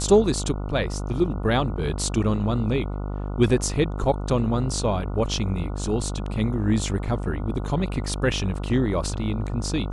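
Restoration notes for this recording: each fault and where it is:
mains buzz 50 Hz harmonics 29 −29 dBFS

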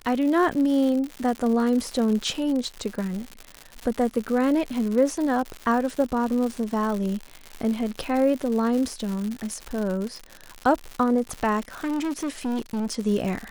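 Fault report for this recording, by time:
surface crackle 160 per second −28 dBFS
0:11.70–0:12.95: clipping −24 dBFS

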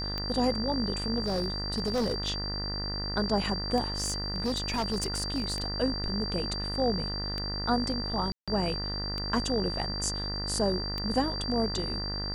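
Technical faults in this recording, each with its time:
mains buzz 50 Hz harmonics 40 −36 dBFS
scratch tick 33 1/3 rpm −19 dBFS
whistle 4,700 Hz −34 dBFS
0:01.22–0:02.29: clipping −24.5 dBFS
0:03.92–0:05.64: clipping −25 dBFS
0:08.32–0:08.48: drop-out 156 ms

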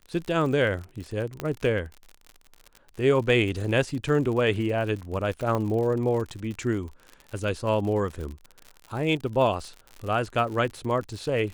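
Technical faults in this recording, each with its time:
surface crackle 61 per second −33 dBFS
0:01.40: click −16 dBFS
0:05.55: click −16 dBFS

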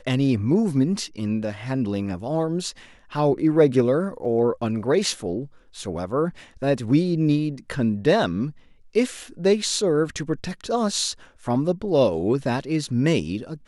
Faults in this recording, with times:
0:04.25: drop-out 3.5 ms

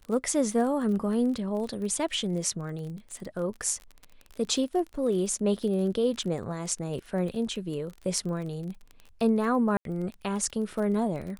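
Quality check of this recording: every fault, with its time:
surface crackle 25 per second −35 dBFS
0:09.77–0:09.85: drop-out 82 ms

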